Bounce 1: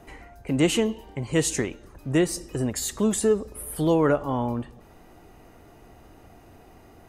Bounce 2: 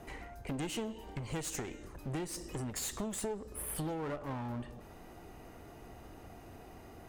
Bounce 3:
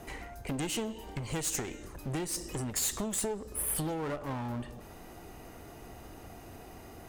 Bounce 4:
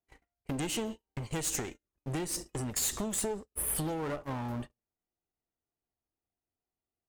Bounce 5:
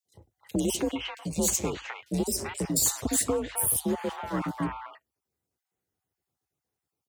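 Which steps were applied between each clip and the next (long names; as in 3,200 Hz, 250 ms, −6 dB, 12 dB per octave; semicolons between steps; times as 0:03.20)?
hum removal 301 Hz, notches 28; downward compressor 10 to 1, threshold −30 dBFS, peak gain reduction 14.5 dB; asymmetric clip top −42 dBFS; level −1 dB
high-shelf EQ 4,100 Hz +6 dB; level +3 dB
noise gate −38 dBFS, range −47 dB
time-frequency cells dropped at random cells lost 23%; three-band delay without the direct sound highs, lows, mids 50/310 ms, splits 760/3,100 Hz; frequency shifter +50 Hz; level +8 dB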